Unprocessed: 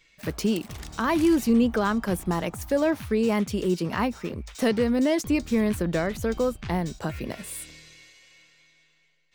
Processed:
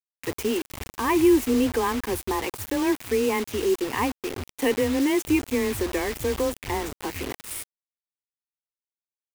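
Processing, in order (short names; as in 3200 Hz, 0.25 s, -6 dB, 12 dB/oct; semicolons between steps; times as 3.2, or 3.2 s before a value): frequency shift +16 Hz; fixed phaser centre 930 Hz, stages 8; requantised 6-bit, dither none; gain +3.5 dB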